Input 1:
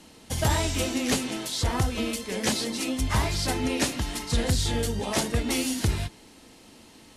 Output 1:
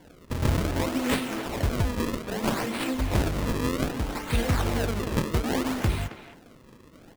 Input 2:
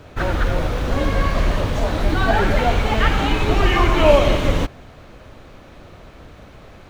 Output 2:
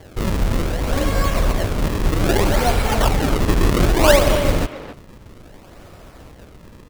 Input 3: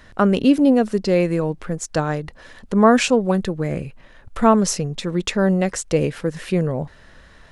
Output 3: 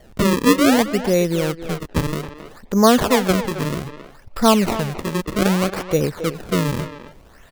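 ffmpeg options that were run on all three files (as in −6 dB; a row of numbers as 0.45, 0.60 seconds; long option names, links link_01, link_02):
-filter_complex "[0:a]acrusher=samples=34:mix=1:aa=0.000001:lfo=1:lforange=54.4:lforate=0.63,asplit=2[link_01][link_02];[link_02]adelay=270,highpass=300,lowpass=3400,asoftclip=type=hard:threshold=-10dB,volume=-10dB[link_03];[link_01][link_03]amix=inputs=2:normalize=0"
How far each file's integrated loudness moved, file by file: −1.0, 0.0, +0.5 LU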